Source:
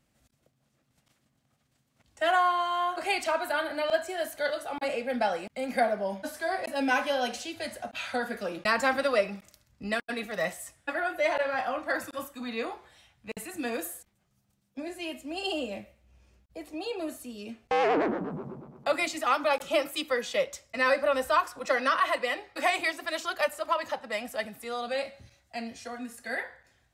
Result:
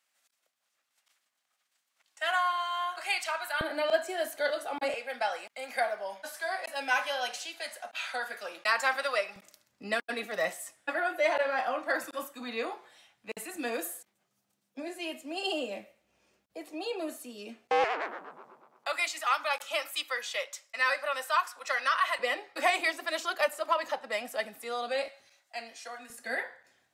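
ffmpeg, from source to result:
ffmpeg -i in.wav -af "asetnsamples=nb_out_samples=441:pad=0,asendcmd='3.61 highpass f 260;4.94 highpass f 800;9.36 highpass f 290;17.84 highpass f 1000;22.19 highpass f 310;25.08 highpass f 660;26.1 highpass f 240',highpass=1100" out.wav

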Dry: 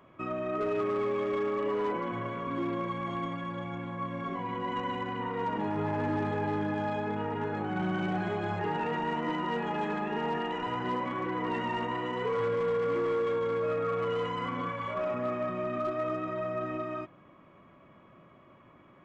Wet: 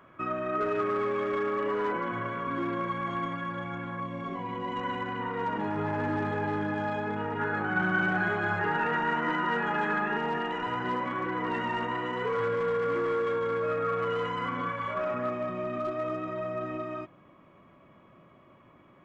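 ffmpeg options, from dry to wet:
ffmpeg -i in.wav -af "asetnsamples=nb_out_samples=441:pad=0,asendcmd='4 equalizer g -2;4.81 equalizer g 5.5;7.39 equalizer g 14;10.17 equalizer g 6.5;15.29 equalizer g -1',equalizer=frequency=1500:width_type=o:width=0.68:gain=9" out.wav

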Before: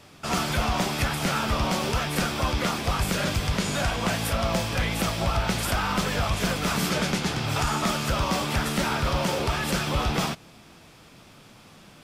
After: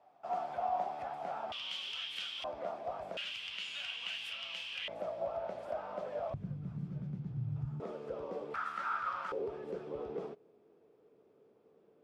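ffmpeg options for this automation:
ffmpeg -i in.wav -af "asetnsamples=nb_out_samples=441:pad=0,asendcmd='1.52 bandpass f 3100;2.44 bandpass f 650;3.17 bandpass f 2900;4.88 bandpass f 610;6.34 bandpass f 130;7.8 bandpass f 460;8.54 bandpass f 1300;9.32 bandpass f 430',bandpass=frequency=730:width_type=q:width=7.7:csg=0" out.wav

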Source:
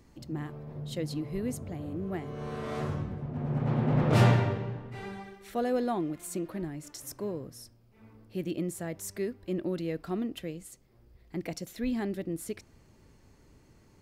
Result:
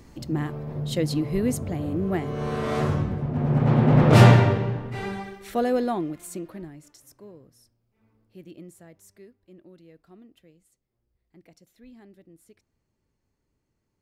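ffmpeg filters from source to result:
ffmpeg -i in.wav -af "volume=9dB,afade=type=out:start_time=5.1:duration=1.12:silence=0.398107,afade=type=out:start_time=6.22:duration=0.82:silence=0.251189,afade=type=out:start_time=8.63:duration=0.76:silence=0.446684" out.wav

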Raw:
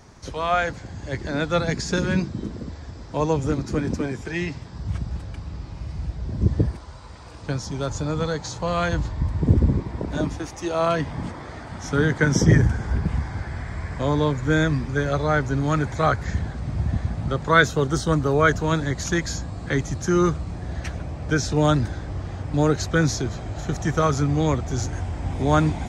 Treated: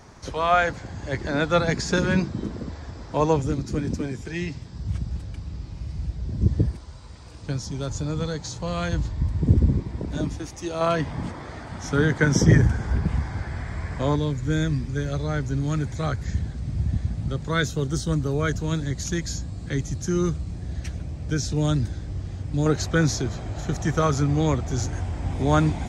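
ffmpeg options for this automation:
ffmpeg -i in.wav -af "asetnsamples=nb_out_samples=441:pad=0,asendcmd='3.42 equalizer g -7.5;10.81 equalizer g -1;14.16 equalizer g -12;22.66 equalizer g -2',equalizer=frequency=990:width_type=o:width=2.6:gain=2.5" out.wav

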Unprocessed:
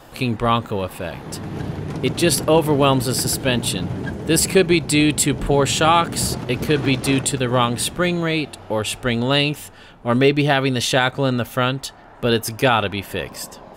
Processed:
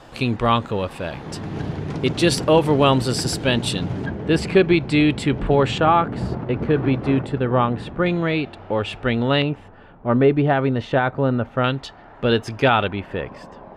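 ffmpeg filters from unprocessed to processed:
ffmpeg -i in.wav -af "asetnsamples=nb_out_samples=441:pad=0,asendcmd='4.06 lowpass f 2800;5.78 lowpass f 1500;8.06 lowpass f 2700;9.42 lowpass f 1400;11.64 lowpass f 3500;12.88 lowpass f 1900',lowpass=6500" out.wav

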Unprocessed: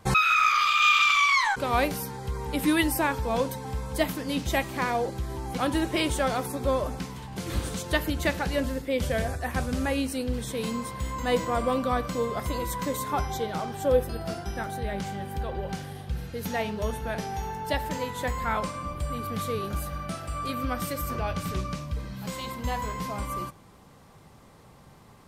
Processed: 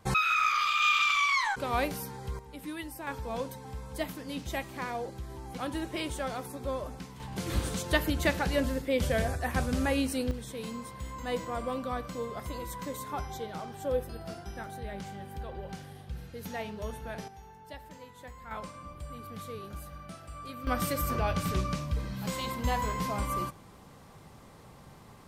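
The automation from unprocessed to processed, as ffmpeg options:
ffmpeg -i in.wav -af "asetnsamples=nb_out_samples=441:pad=0,asendcmd='2.39 volume volume -16dB;3.07 volume volume -8.5dB;7.2 volume volume -1dB;10.31 volume volume -8dB;17.28 volume volume -17.5dB;18.51 volume volume -11dB;20.67 volume volume 0.5dB',volume=-5dB" out.wav

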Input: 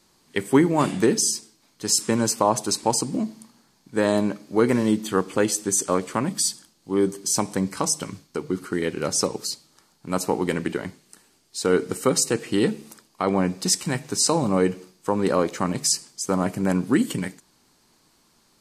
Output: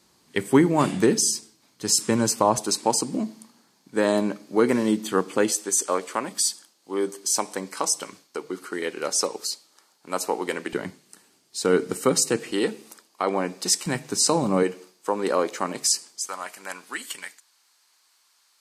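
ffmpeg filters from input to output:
ffmpeg -i in.wav -af "asetnsamples=nb_out_samples=441:pad=0,asendcmd='2.58 highpass f 190;5.52 highpass f 420;10.73 highpass f 140;12.51 highpass f 340;13.86 highpass f 150;14.63 highpass f 350;16.27 highpass f 1200',highpass=58" out.wav

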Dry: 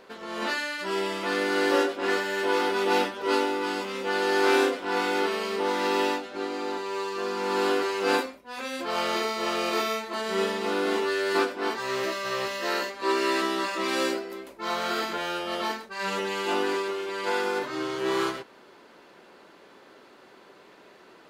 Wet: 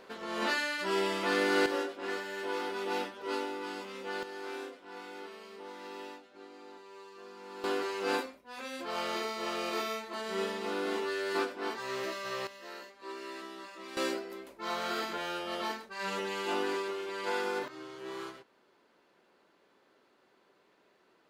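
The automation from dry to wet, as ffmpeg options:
ffmpeg -i in.wav -af "asetnsamples=nb_out_samples=441:pad=0,asendcmd='1.66 volume volume -10.5dB;4.23 volume volume -19.5dB;7.64 volume volume -7.5dB;12.47 volume volume -18dB;13.97 volume volume -6dB;17.68 volume volume -15dB',volume=-2dB" out.wav

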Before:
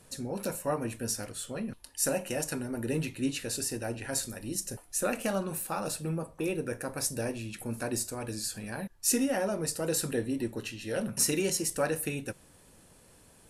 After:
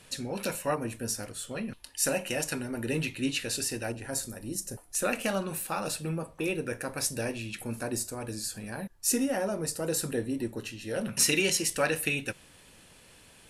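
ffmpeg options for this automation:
ffmpeg -i in.wav -af "asetnsamples=nb_out_samples=441:pad=0,asendcmd='0.75 equalizer g 0.5;1.51 equalizer g 7;3.92 equalizer g -4.5;4.95 equalizer g 6;7.79 equalizer g -1;11.05 equalizer g 11',equalizer=frequency=2800:width_type=o:width=1.7:gain=11" out.wav

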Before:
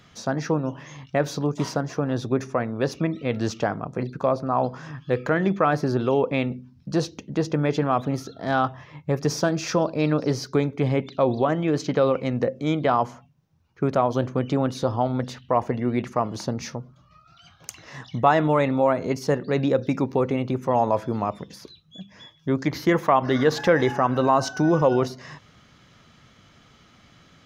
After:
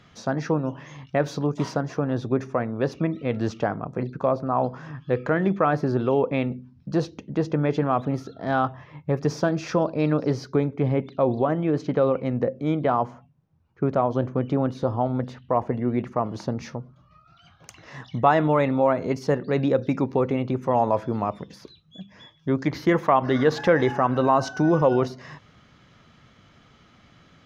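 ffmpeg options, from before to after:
ffmpeg -i in.wav -af "asetnsamples=nb_out_samples=441:pad=0,asendcmd='2.05 lowpass f 2200;10.52 lowpass f 1300;16.26 lowpass f 2200;17.83 lowpass f 3500',lowpass=frequency=3700:poles=1" out.wav

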